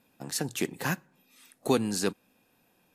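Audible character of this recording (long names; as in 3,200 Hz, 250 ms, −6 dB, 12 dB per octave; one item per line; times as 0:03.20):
background noise floor −69 dBFS
spectral slope −4.0 dB per octave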